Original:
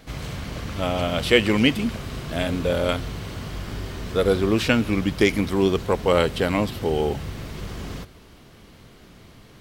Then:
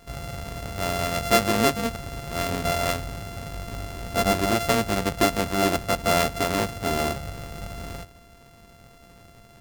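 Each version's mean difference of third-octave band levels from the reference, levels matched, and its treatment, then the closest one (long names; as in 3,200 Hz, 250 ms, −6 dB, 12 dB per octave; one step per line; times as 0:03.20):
5.0 dB: samples sorted by size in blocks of 64 samples
level −2.5 dB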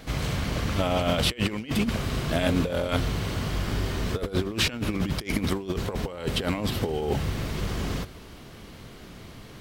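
7.5 dB: compressor whose output falls as the input rises −25 dBFS, ratio −0.5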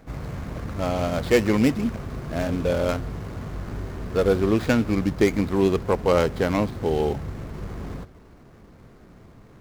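3.0 dB: running median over 15 samples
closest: third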